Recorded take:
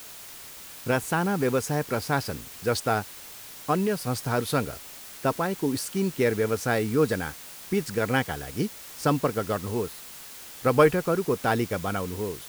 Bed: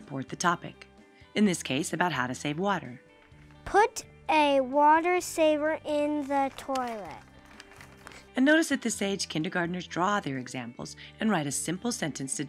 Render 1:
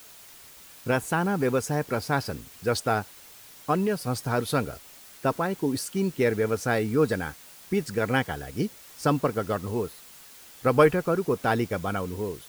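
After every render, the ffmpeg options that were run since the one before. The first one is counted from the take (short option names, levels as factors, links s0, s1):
-af "afftdn=nr=6:nf=-43"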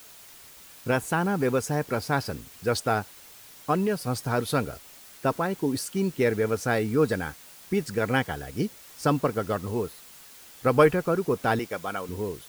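-filter_complex "[0:a]asettb=1/sr,asplit=3[s0][s1][s2];[s0]atrim=end=11.594[s3];[s1]atrim=start=11.59:end=12.09,asetpts=PTS-STARTPTS,afade=t=in:d=0.004:c=qsin,afade=t=out:st=0.496:d=0.004:c=qsin,highpass=f=490:p=1[s4];[s2]atrim=start=12.086[s5];[s3][s4]acrossfade=d=0.004:c1=hsin:c2=qsin[s6];[s6][s5]acrossfade=d=0.004:c1=qsin:c2=hsin"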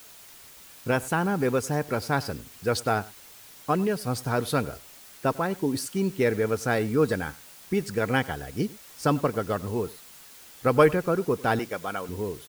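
-af "aecho=1:1:98:0.0841"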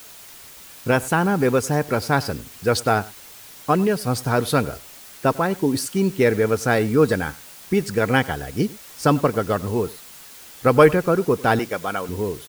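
-af "volume=2,alimiter=limit=0.891:level=0:latency=1"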